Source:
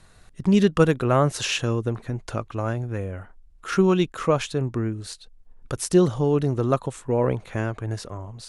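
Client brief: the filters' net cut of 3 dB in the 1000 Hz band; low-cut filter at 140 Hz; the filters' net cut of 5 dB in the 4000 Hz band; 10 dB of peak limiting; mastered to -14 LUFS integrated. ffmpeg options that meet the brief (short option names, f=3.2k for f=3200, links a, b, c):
-af "highpass=140,equalizer=f=1k:t=o:g=-3.5,equalizer=f=4k:t=o:g=-7,volume=15dB,alimiter=limit=-1.5dB:level=0:latency=1"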